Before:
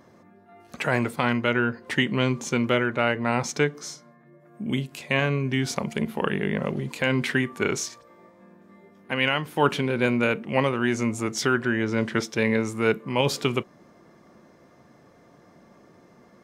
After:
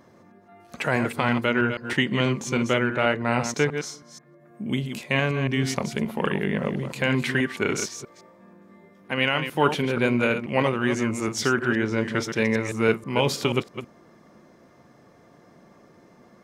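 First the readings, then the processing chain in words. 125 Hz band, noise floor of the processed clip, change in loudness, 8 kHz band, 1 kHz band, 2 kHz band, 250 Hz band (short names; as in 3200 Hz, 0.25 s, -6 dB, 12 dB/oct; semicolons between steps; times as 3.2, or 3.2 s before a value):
+1.0 dB, -55 dBFS, +0.5 dB, +0.5 dB, +0.5 dB, +0.5 dB, +0.5 dB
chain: reverse delay 0.161 s, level -8 dB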